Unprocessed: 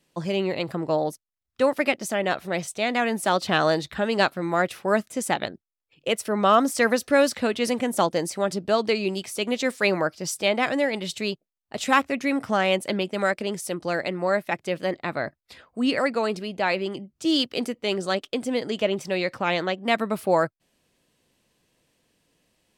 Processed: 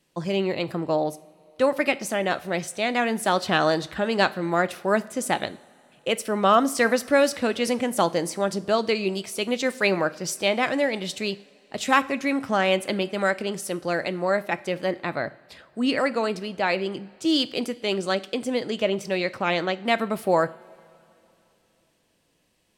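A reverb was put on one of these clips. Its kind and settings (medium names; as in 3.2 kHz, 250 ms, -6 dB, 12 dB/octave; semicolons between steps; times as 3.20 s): two-slope reverb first 0.45 s, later 3.1 s, from -18 dB, DRR 14 dB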